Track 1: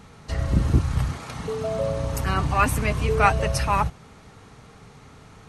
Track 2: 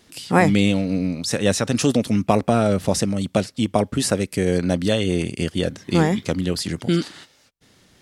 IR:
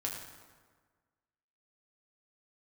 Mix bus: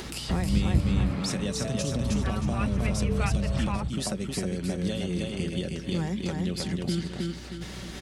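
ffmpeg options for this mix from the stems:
-filter_complex "[0:a]lowpass=f=3200:w=0.5412,lowpass=f=3200:w=1.3066,volume=1.26[s0];[1:a]acompressor=mode=upward:threshold=0.0355:ratio=2.5,aecho=1:1:5.3:0.39,acompressor=threshold=0.02:ratio=2,volume=1.06,asplit=3[s1][s2][s3];[s2]volume=0.668[s4];[s3]apad=whole_len=242006[s5];[s0][s5]sidechaincompress=threshold=0.0398:ratio=8:attack=16:release=605[s6];[s4]aecho=0:1:314|628|942|1256|1570:1|0.36|0.13|0.0467|0.0168[s7];[s6][s1][s7]amix=inputs=3:normalize=0,highshelf=f=8600:g=-6,acrossover=split=230|3000[s8][s9][s10];[s9]acompressor=threshold=0.0224:ratio=6[s11];[s8][s11][s10]amix=inputs=3:normalize=0,aeval=exprs='val(0)+0.00794*(sin(2*PI*60*n/s)+sin(2*PI*2*60*n/s)/2+sin(2*PI*3*60*n/s)/3+sin(2*PI*4*60*n/s)/4+sin(2*PI*5*60*n/s)/5)':c=same"

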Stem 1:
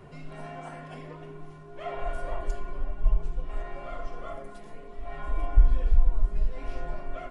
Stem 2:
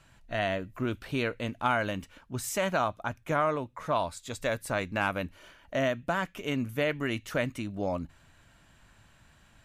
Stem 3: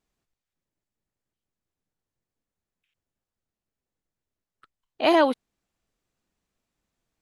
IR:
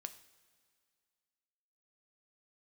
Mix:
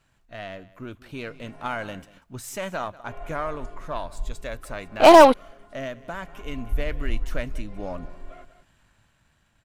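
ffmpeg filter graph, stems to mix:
-filter_complex "[0:a]adelay=1150,volume=0.251,asplit=3[s0][s1][s2];[s0]atrim=end=1.99,asetpts=PTS-STARTPTS,afade=t=out:st=1.986:d=0.004:c=hsin[s3];[s1]atrim=start=1.99:end=3.07,asetpts=PTS-STARTPTS,volume=0[s4];[s2]atrim=start=3.07,asetpts=PTS-STARTPTS,afade=t=in:d=0.004:c=hsin[s5];[s3][s4][s5]concat=n=3:v=0:a=1,asplit=2[s6][s7];[s7]volume=0.266[s8];[1:a]aeval=exprs='if(lt(val(0),0),0.708*val(0),val(0))':c=same,volume=0.447,asplit=3[s9][s10][s11];[s10]volume=0.168[s12];[s11]volume=0.112[s13];[2:a]equalizer=f=870:t=o:w=1.9:g=7.5,aeval=exprs='0.398*(cos(1*acos(clip(val(0)/0.398,-1,1)))-cos(1*PI/2))+0.0316*(cos(6*acos(clip(val(0)/0.398,-1,1)))-cos(6*PI/2))':c=same,volume=1.19[s14];[3:a]atrim=start_sample=2205[s15];[s12][s15]afir=irnorm=-1:irlink=0[s16];[s8][s13]amix=inputs=2:normalize=0,aecho=0:1:190:1[s17];[s6][s9][s14][s16][s17]amix=inputs=5:normalize=0,dynaudnorm=f=360:g=7:m=1.78"

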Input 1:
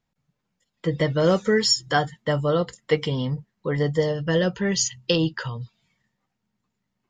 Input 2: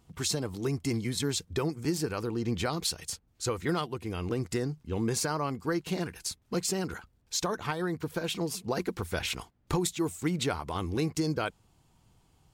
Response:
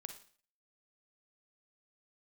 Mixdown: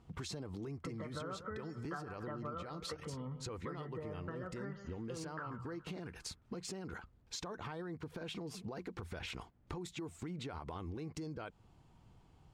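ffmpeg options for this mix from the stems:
-filter_complex "[0:a]acompressor=threshold=0.0794:ratio=6,lowpass=f=1300:t=q:w=7.4,volume=0.299,asplit=2[s0][s1];[s1]volume=0.224[s2];[1:a]aemphasis=mode=reproduction:type=75fm,alimiter=level_in=1.68:limit=0.0631:level=0:latency=1,volume=0.596,volume=1.06[s3];[s2]aecho=0:1:140|280|420|560|700|840|980:1|0.48|0.23|0.111|0.0531|0.0255|0.0122[s4];[s0][s3][s4]amix=inputs=3:normalize=0,acompressor=threshold=0.00891:ratio=6"

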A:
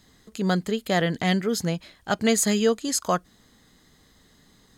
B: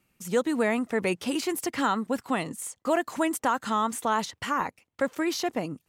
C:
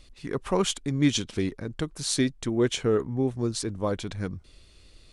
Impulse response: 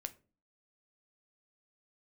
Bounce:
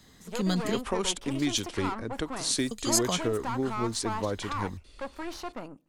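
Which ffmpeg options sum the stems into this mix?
-filter_complex "[0:a]acrossover=split=170|3000[s0][s1][s2];[s1]acompressor=threshold=0.0224:ratio=6[s3];[s0][s3][s2]amix=inputs=3:normalize=0,volume=1.12,asplit=3[s4][s5][s6];[s4]atrim=end=0.83,asetpts=PTS-STARTPTS,afade=t=out:st=0.826:d=0.004:c=hsin[s7];[s5]atrim=start=0.83:end=2.71,asetpts=PTS-STARTPTS,volume=0[s8];[s6]atrim=start=2.71,asetpts=PTS-STARTPTS,afade=t=in:d=0.004:c=hsin[s9];[s7][s8][s9]concat=n=3:v=0:a=1[s10];[1:a]highshelf=f=9000:g=-7,aeval=exprs='(tanh(25.1*val(0)+0.75)-tanh(0.75))/25.1':c=same,equalizer=f=1000:w=1.1:g=7.5,volume=0.335,asplit=2[s11][s12];[s12]volume=0.668[s13];[2:a]equalizer=f=150:w=2.1:g=-10,acrossover=split=140|3000[s14][s15][s16];[s15]acompressor=threshold=0.0501:ratio=6[s17];[s14][s17][s16]amix=inputs=3:normalize=0,adelay=400,volume=1[s18];[3:a]atrim=start_sample=2205[s19];[s13][s19]afir=irnorm=-1:irlink=0[s20];[s10][s11][s18][s20]amix=inputs=4:normalize=0"

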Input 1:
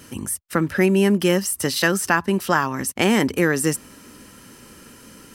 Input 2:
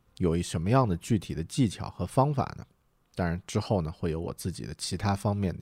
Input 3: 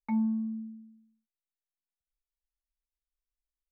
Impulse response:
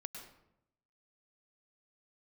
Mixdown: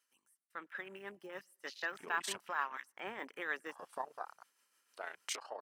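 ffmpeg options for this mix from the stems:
-filter_complex "[0:a]deesser=0.7,lowshelf=f=76:g=10.5,tremolo=f=6.5:d=0.48,volume=0.158,asplit=3[s0][s1][s2];[s1]volume=0.188[s3];[1:a]acompressor=threshold=0.0178:ratio=3,tremolo=f=29:d=0.571,adelay=1800,volume=0.944,asplit=3[s4][s5][s6];[s4]atrim=end=2.41,asetpts=PTS-STARTPTS,afade=t=out:st=2.406:d=0.004:c=hsin[s7];[s5]atrim=start=2.41:end=3.69,asetpts=PTS-STARTPTS,volume=0[s8];[s6]atrim=start=3.69,asetpts=PTS-STARTPTS,afade=t=in:d=0.004:c=hsin[s9];[s7][s8][s9]concat=n=3:v=0:a=1[s10];[2:a]adelay=1900,volume=0.251[s11];[s2]apad=whole_len=247444[s12];[s11][s12]sidechaincompress=threshold=0.00178:ratio=8:attack=16:release=130[s13];[3:a]atrim=start_sample=2205[s14];[s3][s14]afir=irnorm=-1:irlink=0[s15];[s0][s10][s13][s15]amix=inputs=4:normalize=0,highpass=1000,afwtdn=0.00224,dynaudnorm=f=260:g=9:m=2"

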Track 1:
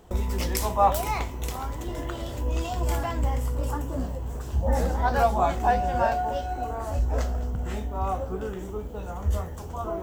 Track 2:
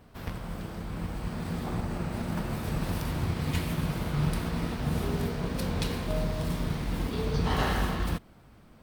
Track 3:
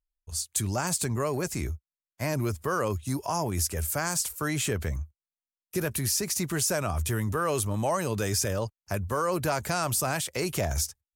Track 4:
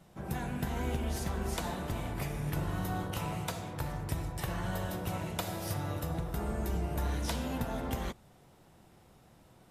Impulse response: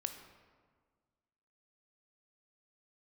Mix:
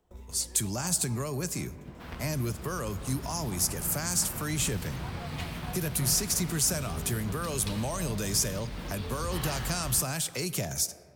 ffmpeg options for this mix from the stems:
-filter_complex "[0:a]volume=0.1[s0];[1:a]equalizer=f=1800:w=0.31:g=8.5,adelay=1850,volume=0.299,asplit=2[s1][s2];[s2]volume=0.376[s3];[2:a]highpass=f=120:w=0.5412,highpass=f=120:w=1.3066,volume=0.794,asplit=2[s4][s5];[s5]volume=0.596[s6];[3:a]highpass=f=90:w=0.5412,highpass=f=90:w=1.3066,aemphasis=mode=reproduction:type=bsi,adelay=1250,volume=0.133[s7];[4:a]atrim=start_sample=2205[s8];[s3][s6]amix=inputs=2:normalize=0[s9];[s9][s8]afir=irnorm=-1:irlink=0[s10];[s0][s1][s4][s7][s10]amix=inputs=5:normalize=0,acrossover=split=210|3000[s11][s12][s13];[s12]acompressor=threshold=0.00794:ratio=2[s14];[s11][s14][s13]amix=inputs=3:normalize=0"

